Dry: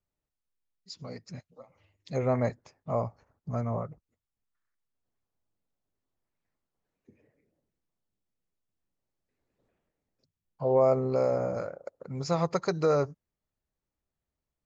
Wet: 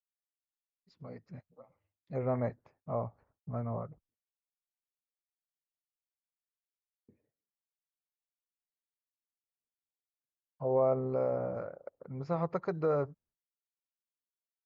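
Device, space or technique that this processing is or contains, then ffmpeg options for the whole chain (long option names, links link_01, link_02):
hearing-loss simulation: -af "lowpass=1800,agate=range=-33dB:threshold=-57dB:ratio=3:detection=peak,volume=-5dB"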